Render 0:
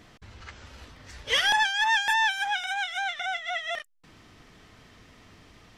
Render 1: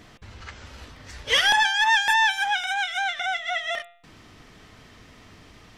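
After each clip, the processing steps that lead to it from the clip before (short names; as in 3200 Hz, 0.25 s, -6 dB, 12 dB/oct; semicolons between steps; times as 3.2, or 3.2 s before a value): de-hum 173 Hz, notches 23; gain +4 dB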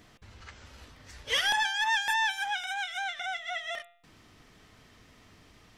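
high shelf 9000 Hz +6.5 dB; gain -8 dB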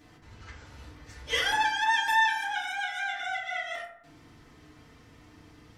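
FDN reverb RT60 0.77 s, low-frequency decay 1.6×, high-frequency decay 0.35×, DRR -4.5 dB; gain -4.5 dB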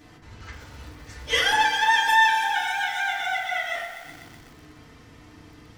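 lo-fi delay 0.124 s, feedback 80%, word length 8-bit, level -11.5 dB; gain +5.5 dB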